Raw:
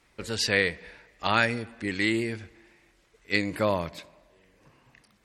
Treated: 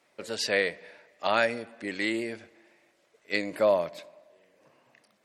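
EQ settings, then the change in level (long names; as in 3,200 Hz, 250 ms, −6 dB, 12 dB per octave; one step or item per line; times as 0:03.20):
high-pass filter 210 Hz 12 dB per octave
parametric band 610 Hz +10 dB 0.49 octaves
−3.5 dB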